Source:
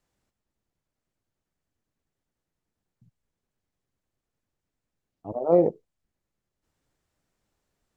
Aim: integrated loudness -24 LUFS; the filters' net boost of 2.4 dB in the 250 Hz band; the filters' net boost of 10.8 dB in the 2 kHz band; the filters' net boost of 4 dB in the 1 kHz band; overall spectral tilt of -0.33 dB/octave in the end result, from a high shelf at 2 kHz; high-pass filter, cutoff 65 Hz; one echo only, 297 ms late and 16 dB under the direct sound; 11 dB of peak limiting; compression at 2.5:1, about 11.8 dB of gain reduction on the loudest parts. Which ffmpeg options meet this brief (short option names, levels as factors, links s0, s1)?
-af "highpass=65,equalizer=f=250:t=o:g=3.5,equalizer=f=1000:t=o:g=3.5,highshelf=f=2000:g=6,equalizer=f=2000:t=o:g=8,acompressor=threshold=0.0355:ratio=2.5,alimiter=level_in=1.26:limit=0.0631:level=0:latency=1,volume=0.794,aecho=1:1:297:0.158,volume=5.62"